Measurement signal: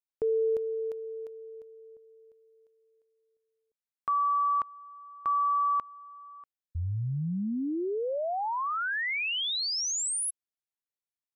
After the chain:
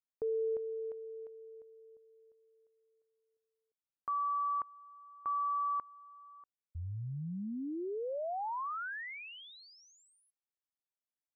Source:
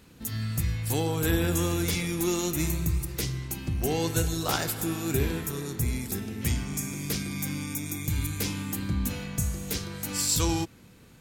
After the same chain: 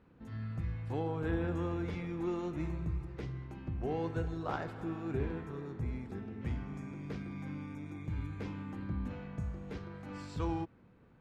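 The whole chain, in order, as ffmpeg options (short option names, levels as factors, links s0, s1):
-af "lowpass=1300,lowshelf=f=470:g=-4.5,volume=0.596"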